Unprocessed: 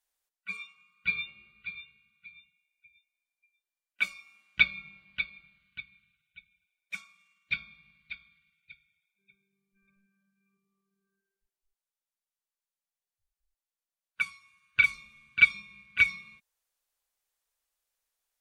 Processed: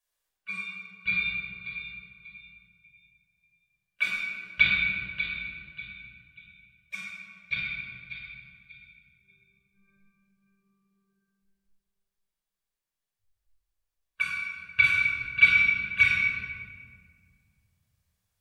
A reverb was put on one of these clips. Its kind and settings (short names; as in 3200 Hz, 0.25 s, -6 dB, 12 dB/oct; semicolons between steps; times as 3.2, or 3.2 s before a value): shoebox room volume 2700 m³, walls mixed, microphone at 5.6 m; gain -4 dB